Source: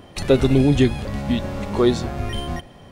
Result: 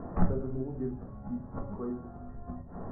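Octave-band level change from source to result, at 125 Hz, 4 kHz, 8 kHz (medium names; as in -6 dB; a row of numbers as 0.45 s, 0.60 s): -14.5 dB, under -40 dB, under -40 dB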